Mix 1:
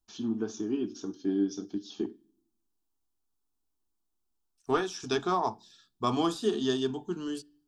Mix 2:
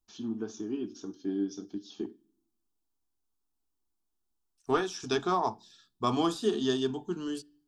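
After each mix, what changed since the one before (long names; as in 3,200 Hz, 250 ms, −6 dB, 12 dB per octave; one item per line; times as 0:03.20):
first voice −3.5 dB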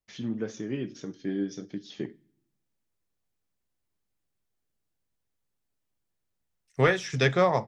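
second voice: entry +2.10 s
master: remove phaser with its sweep stopped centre 540 Hz, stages 6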